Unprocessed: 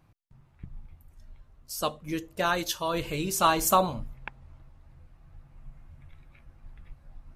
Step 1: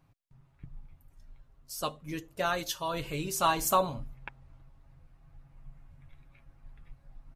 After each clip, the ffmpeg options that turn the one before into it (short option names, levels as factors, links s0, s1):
-af "aecho=1:1:7.3:0.39,volume=0.596"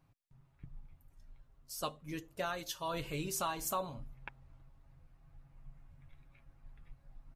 -af "alimiter=limit=0.0891:level=0:latency=1:release=435,volume=0.631"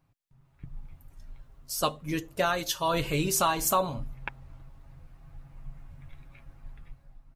-af "dynaudnorm=f=180:g=7:m=3.55"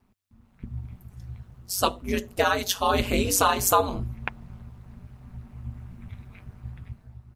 -af "aeval=exprs='val(0)*sin(2*PI*95*n/s)':c=same,volume=2.24"